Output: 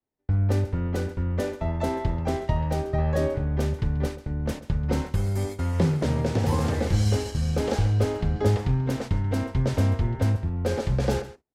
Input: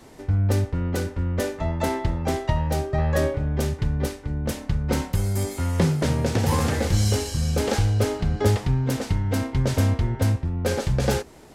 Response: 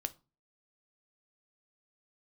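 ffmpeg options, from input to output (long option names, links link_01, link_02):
-filter_complex "[0:a]aemphasis=mode=reproduction:type=cd,agate=range=-40dB:threshold=-31dB:ratio=16:detection=peak,aecho=1:1:135:0.158,acrossover=split=370|1000|3000[link_01][link_02][link_03][link_04];[link_03]alimiter=level_in=9dB:limit=-24dB:level=0:latency=1,volume=-9dB[link_05];[link_01][link_02][link_05][link_04]amix=inputs=4:normalize=0,volume=-2dB"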